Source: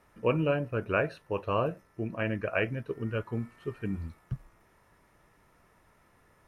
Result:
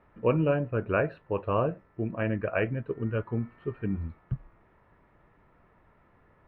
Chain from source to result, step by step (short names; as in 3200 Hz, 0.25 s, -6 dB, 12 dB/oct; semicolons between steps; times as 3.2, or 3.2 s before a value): air absorption 500 m; gain +3.5 dB